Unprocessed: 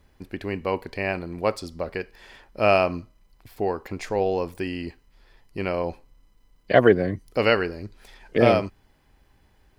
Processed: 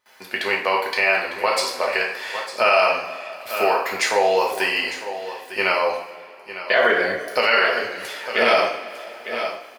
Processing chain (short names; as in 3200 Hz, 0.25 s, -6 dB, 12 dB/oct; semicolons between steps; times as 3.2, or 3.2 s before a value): HPF 870 Hz 12 dB/oct; gate with hold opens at -59 dBFS; in parallel at +3 dB: compressor, threshold -35 dBFS, peak gain reduction 17.5 dB; on the sum: vibrato 1.8 Hz 7 cents; echo 0.903 s -13 dB; reverb, pre-delay 3 ms, DRR -2 dB; maximiser +12.5 dB; gain -6 dB